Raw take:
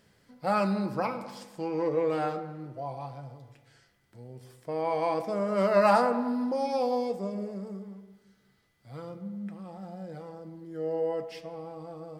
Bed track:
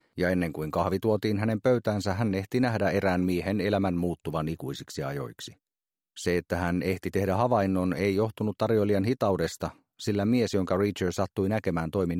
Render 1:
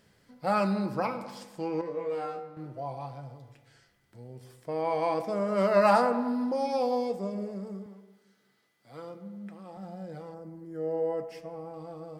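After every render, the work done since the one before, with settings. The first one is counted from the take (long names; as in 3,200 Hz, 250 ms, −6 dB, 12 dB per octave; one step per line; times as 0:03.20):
0:01.81–0:02.57: tuned comb filter 59 Hz, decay 0.27 s, mix 100%
0:07.86–0:09.77: high-pass filter 240 Hz
0:10.34–0:11.74: parametric band 3,600 Hz −10.5 dB 0.97 octaves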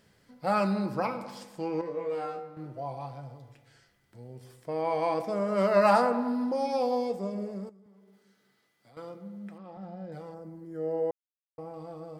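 0:07.69–0:08.97: downward compressor 8 to 1, threshold −54 dBFS
0:09.58–0:10.12: high-frequency loss of the air 160 metres
0:11.11–0:11.58: silence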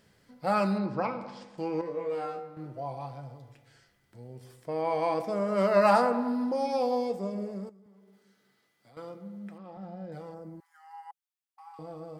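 0:00.78–0:01.58: high-frequency loss of the air 120 metres
0:10.60–0:11.79: linear-phase brick-wall high-pass 760 Hz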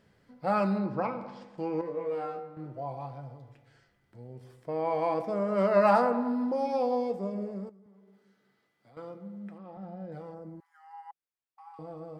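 high-shelf EQ 3,700 Hz −11.5 dB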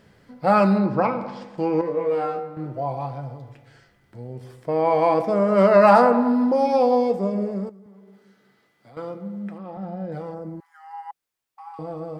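level +10 dB
brickwall limiter −3 dBFS, peak gain reduction 2.5 dB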